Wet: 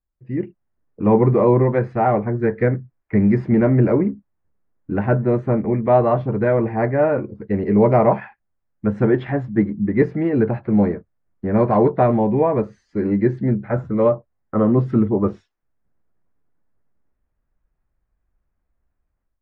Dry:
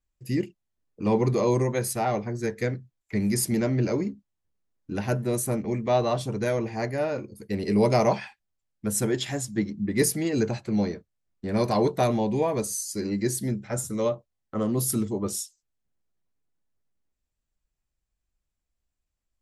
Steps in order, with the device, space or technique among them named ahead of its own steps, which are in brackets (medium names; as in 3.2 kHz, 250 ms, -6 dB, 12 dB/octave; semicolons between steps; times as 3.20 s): action camera in a waterproof case (low-pass 1.8 kHz 24 dB/octave; level rider gain up to 13 dB; trim -2 dB; AAC 64 kbps 44.1 kHz)